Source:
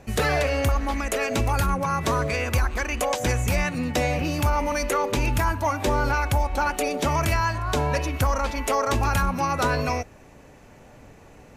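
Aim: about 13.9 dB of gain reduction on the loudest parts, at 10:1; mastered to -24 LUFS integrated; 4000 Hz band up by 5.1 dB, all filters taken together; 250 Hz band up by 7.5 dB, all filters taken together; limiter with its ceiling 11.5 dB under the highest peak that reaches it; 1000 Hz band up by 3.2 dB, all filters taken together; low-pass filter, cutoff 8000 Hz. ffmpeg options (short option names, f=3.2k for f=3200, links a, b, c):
-af "lowpass=8k,equalizer=f=250:t=o:g=9,equalizer=f=1k:t=o:g=3,equalizer=f=4k:t=o:g=6.5,acompressor=threshold=-30dB:ratio=10,volume=14.5dB,alimiter=limit=-15dB:level=0:latency=1"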